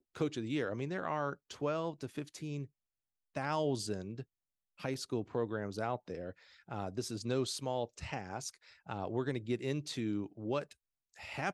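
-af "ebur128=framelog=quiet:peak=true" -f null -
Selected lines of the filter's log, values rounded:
Integrated loudness:
  I:         -38.5 LUFS
  Threshold: -48.8 LUFS
Loudness range:
  LRA:         2.0 LU
  Threshold: -59.2 LUFS
  LRA low:   -40.4 LUFS
  LRA high:  -38.4 LUFS
True peak:
  Peak:      -20.9 dBFS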